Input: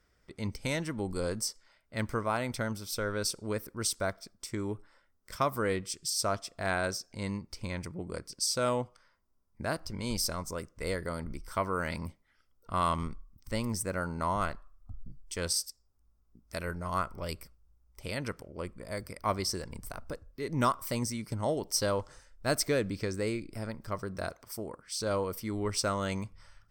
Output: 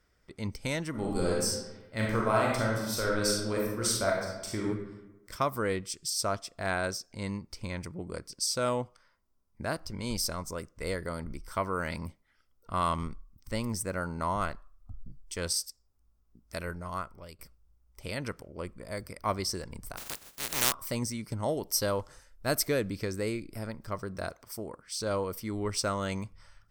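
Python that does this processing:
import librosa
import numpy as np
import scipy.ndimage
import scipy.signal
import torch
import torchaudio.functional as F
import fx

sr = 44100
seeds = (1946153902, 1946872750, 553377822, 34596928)

y = fx.reverb_throw(x, sr, start_s=0.9, length_s=3.73, rt60_s=1.1, drr_db=-3.0)
y = fx.spec_flatten(y, sr, power=0.13, at=(19.96, 20.71), fade=0.02)
y = fx.peak_eq(y, sr, hz=12000.0, db=12.0, octaves=0.26, at=(21.43, 23.68))
y = fx.edit(y, sr, fx.fade_out_to(start_s=16.59, length_s=0.8, floor_db=-15.5), tone=tone)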